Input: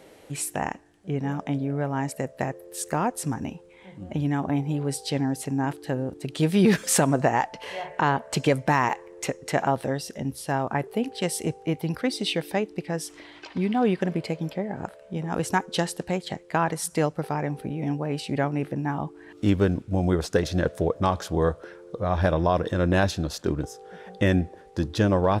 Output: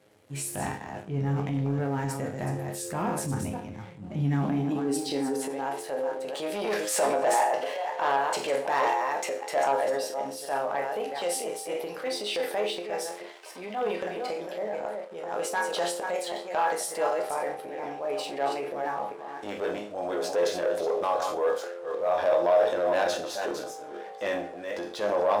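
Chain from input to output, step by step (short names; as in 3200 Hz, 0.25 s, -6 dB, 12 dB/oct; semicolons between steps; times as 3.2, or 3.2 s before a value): reverse delay 0.255 s, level -7 dB; resonator bank C#2 major, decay 0.35 s; sample leveller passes 2; high-pass sweep 96 Hz -> 560 Hz, 3.73–5.71; transient shaper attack -5 dB, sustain +4 dB; gain +1 dB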